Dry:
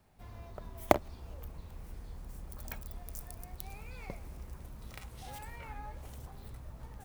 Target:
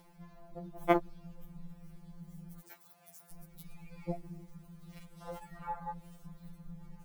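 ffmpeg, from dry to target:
ffmpeg -i in.wav -filter_complex "[0:a]afwtdn=0.00891,asettb=1/sr,asplit=3[link_01][link_02][link_03];[link_01]atrim=end=2.594[link_04];[link_02]atrim=start=2.59:end=3.33,asetpts=PTS-STARTPTS,afade=type=in:duration=0.004:curve=qsin,afade=type=out:start_time=0.736:duration=0.004:curve=qsin,highpass=570[link_05];[link_03]atrim=start=3.326[link_06];[link_04][link_05]acrossfade=duration=0.004:curve1=hsin:curve2=qsin[link_07];[link_07][link_06]acrossfade=duration=0.004:curve1=qsin:curve2=hsin,acompressor=mode=upward:threshold=-57dB:ratio=2.5,alimiter=level_in=10.5dB:limit=-1dB:release=50:level=0:latency=1,afftfilt=real='re*2.83*eq(mod(b,8),0)':imag='im*2.83*eq(mod(b,8),0)':win_size=2048:overlap=0.75" out.wav

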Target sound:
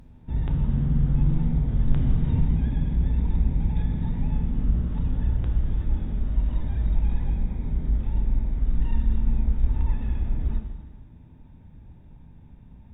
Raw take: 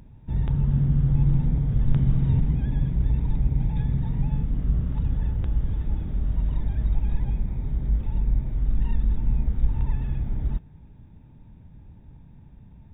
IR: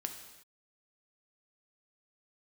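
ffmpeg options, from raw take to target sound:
-filter_complex "[0:a]equalizer=frequency=130:width_type=o:width=0.21:gain=-11.5[link_01];[1:a]atrim=start_sample=2205,asetrate=32634,aresample=44100[link_02];[link_01][link_02]afir=irnorm=-1:irlink=0"

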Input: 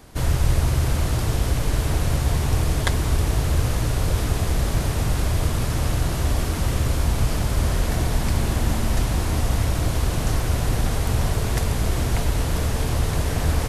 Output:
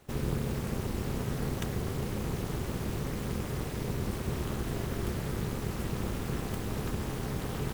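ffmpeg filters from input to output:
ffmpeg -i in.wav -af "asetrate=78057,aresample=44100,tremolo=f=290:d=0.889,volume=-9dB" out.wav

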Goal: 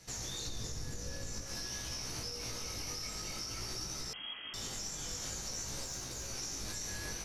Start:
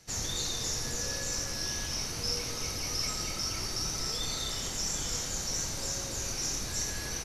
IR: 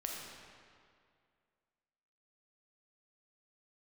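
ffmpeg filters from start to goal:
-filter_complex "[0:a]asettb=1/sr,asplit=3[link_01][link_02][link_03];[link_01]atrim=end=0.464[link_04];[link_02]atrim=start=0.46:end=1.44,asetpts=PTS-STARTPTS,afade=type=in:duration=0.004:curve=qsin,afade=type=out:start_time=0.976:duration=0.004:curve=qsin,lowshelf=frequency=320:gain=11.5[link_05];[link_03]atrim=start=1.436[link_06];[link_04][link_05]acrossfade=duration=0.004:curve1=hsin:curve2=qsin[link_07];[link_07][link_06]acrossfade=duration=0.004:curve1=qsin:curve2=hsin,acompressor=threshold=-31dB:ratio=6,alimiter=level_in=8dB:limit=-24dB:level=0:latency=1:release=172,volume=-8dB,asettb=1/sr,asplit=3[link_08][link_09][link_10];[link_08]atrim=end=5.834[link_11];[link_09]atrim=start=5.83:end=6.29,asetpts=PTS-STARTPTS,afade=type=in:duration=0.004:curve=qsin,afade=type=out:start_time=0.456:duration=0.004:curve=qsin,aeval=exprs='0.0251*(cos(1*acos(clip(val(0)/0.0251,-1,1)))-cos(1*PI/2))+0.00224*(cos(3*acos(clip(val(0)/0.0251,-1,1)))-cos(3*PI/2))':channel_layout=same[link_12];[link_10]atrim=start=6.286[link_13];[link_11][link_12]acrossfade=duration=0.004:curve1=hsin:curve2=qsin[link_14];[link_14][link_13]acrossfade=duration=0.004:curve1=qsin:curve2=hsin,flanger=delay=15.5:depth=4.8:speed=0.5,asettb=1/sr,asplit=3[link_15][link_16][link_17];[link_15]atrim=end=4.134[link_18];[link_16]atrim=start=4.13:end=4.54,asetpts=PTS-STARTPTS,afade=type=in:duration=0.004:curve=qsin,afade=type=out:start_time=0.406:duration=0.004:curve=qsin,lowpass=frequency=2800:width_type=q:width=0.5098,lowpass=frequency=2800:width_type=q:width=0.6013,lowpass=frequency=2800:width_type=q:width=0.9,lowpass=frequency=2800:width_type=q:width=2.563,afreqshift=-3300[link_19];[link_17]atrim=start=4.536[link_20];[link_18][link_19]acrossfade=duration=0.004:curve1=hsin:curve2=qsin[link_21];[link_21][link_20]acrossfade=duration=0.004:curve1=qsin:curve2=hsin,volume=4dB"

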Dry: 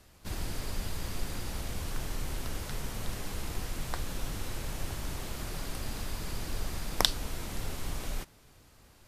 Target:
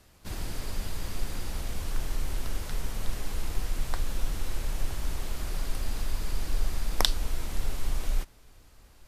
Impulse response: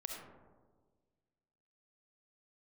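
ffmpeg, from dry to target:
-af "asubboost=boost=3:cutoff=61"

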